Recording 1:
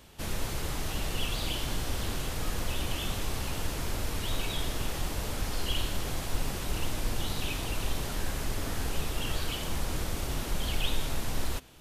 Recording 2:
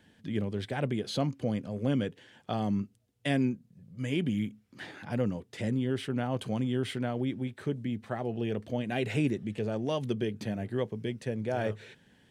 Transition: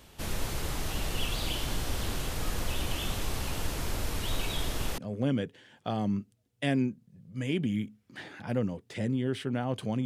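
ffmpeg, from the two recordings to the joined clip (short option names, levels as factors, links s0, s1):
-filter_complex "[0:a]apad=whole_dur=10.05,atrim=end=10.05,atrim=end=4.982[s0];[1:a]atrim=start=1.608:end=6.68[s1];[s0][s1]acrossfade=d=0.004:c1=hsin:c2=hsin"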